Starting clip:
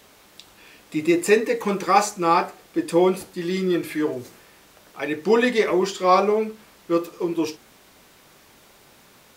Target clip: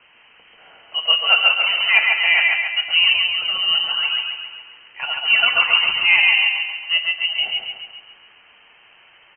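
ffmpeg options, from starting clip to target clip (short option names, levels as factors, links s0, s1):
-filter_complex "[0:a]asplit=2[s0][s1];[s1]aecho=0:1:146:0.447[s2];[s0][s2]amix=inputs=2:normalize=0,lowpass=f=2700:t=q:w=0.5098,lowpass=f=2700:t=q:w=0.6013,lowpass=f=2700:t=q:w=0.9,lowpass=f=2700:t=q:w=2.563,afreqshift=-3200,asplit=2[s3][s4];[s4]aecho=0:1:137|274|411|548|685|822|959:0.631|0.328|0.171|0.0887|0.0461|0.024|0.0125[s5];[s3][s5]amix=inputs=2:normalize=0,volume=1.12"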